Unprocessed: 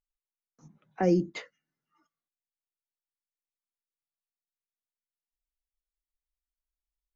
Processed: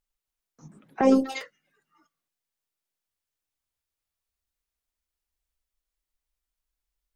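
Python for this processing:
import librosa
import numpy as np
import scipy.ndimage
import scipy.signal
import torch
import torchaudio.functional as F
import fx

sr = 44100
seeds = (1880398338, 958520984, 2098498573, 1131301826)

y = fx.echo_pitch(x, sr, ms=278, semitones=5, count=3, db_per_echo=-6.0)
y = fx.robotise(y, sr, hz=265.0, at=(1.01, 1.41))
y = F.gain(torch.from_numpy(y), 6.5).numpy()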